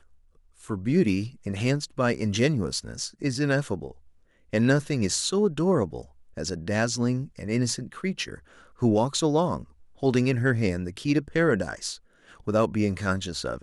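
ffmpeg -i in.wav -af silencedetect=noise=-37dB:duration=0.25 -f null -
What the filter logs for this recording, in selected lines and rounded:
silence_start: 0.00
silence_end: 0.69 | silence_duration: 0.69
silence_start: 3.91
silence_end: 4.53 | silence_duration: 0.62
silence_start: 6.02
silence_end: 6.37 | silence_duration: 0.36
silence_start: 8.35
silence_end: 8.82 | silence_duration: 0.47
silence_start: 9.64
silence_end: 10.03 | silence_duration: 0.39
silence_start: 11.96
silence_end: 12.47 | silence_duration: 0.51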